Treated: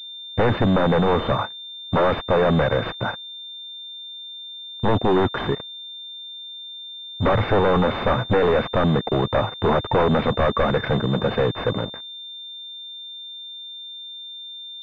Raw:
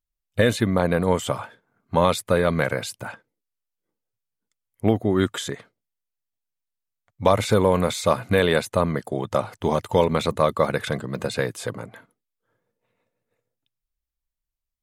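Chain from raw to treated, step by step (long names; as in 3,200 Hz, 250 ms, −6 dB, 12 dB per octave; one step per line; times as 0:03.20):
wavefolder on the positive side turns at −17.5 dBFS
leveller curve on the samples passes 5
switching amplifier with a slow clock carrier 3,600 Hz
level −7.5 dB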